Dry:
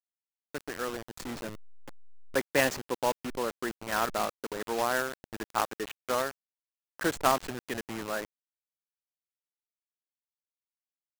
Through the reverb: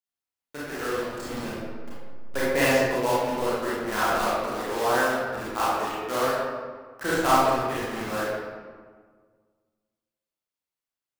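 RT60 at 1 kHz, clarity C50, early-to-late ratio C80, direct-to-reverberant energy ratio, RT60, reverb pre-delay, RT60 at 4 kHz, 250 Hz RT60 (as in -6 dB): 1.6 s, -3.5 dB, -0.5 dB, -9.0 dB, 1.6 s, 26 ms, 0.95 s, 1.9 s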